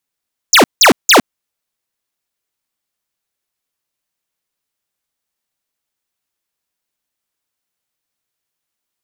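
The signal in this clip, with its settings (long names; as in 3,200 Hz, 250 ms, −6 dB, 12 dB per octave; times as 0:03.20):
repeated falling chirps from 7,600 Hz, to 190 Hz, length 0.11 s square, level −6 dB, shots 3, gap 0.17 s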